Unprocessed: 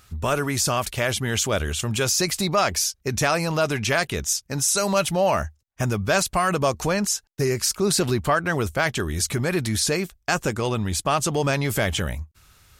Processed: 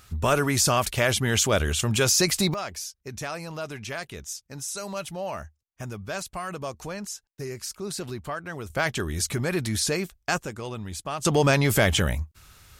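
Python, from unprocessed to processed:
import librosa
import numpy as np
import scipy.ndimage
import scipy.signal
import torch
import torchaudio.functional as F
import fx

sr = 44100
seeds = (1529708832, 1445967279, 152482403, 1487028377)

y = fx.gain(x, sr, db=fx.steps((0.0, 1.0), (2.54, -12.0), (8.7, -3.0), (10.38, -10.0), (11.25, 2.5)))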